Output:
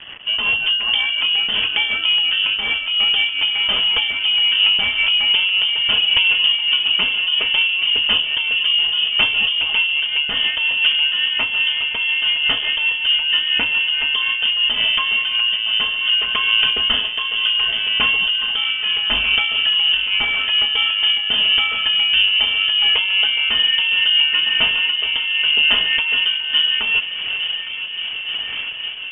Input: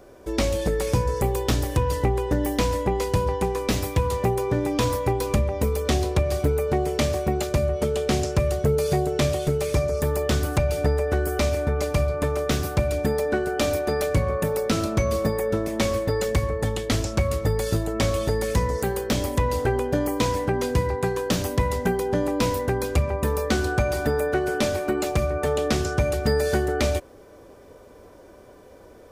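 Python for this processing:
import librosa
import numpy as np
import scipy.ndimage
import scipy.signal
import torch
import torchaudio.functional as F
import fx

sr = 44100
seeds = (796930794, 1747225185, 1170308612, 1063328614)

p1 = scipy.signal.sosfilt(scipy.signal.butter(2, 190.0, 'highpass', fs=sr, output='sos'), x)
p2 = p1 + 0.57 * np.pad(p1, (int(4.9 * sr / 1000.0), 0))[:len(p1)]
p3 = fx.over_compress(p2, sr, threshold_db=-28.0, ratio=-1.0)
p4 = p2 + (p3 * 10.0 ** (2.0 / 20.0))
p5 = fx.quant_dither(p4, sr, seeds[0], bits=6, dither='none')
p6 = fx.rotary_switch(p5, sr, hz=5.5, then_hz=0.75, switch_at_s=13.68)
p7 = p6 + fx.echo_wet_lowpass(p6, sr, ms=859, feedback_pct=80, hz=1300.0, wet_db=-9, dry=0)
p8 = fx.freq_invert(p7, sr, carrier_hz=3300)
p9 = fx.am_noise(p8, sr, seeds[1], hz=5.7, depth_pct=65)
y = p9 * 10.0 ** (5.5 / 20.0)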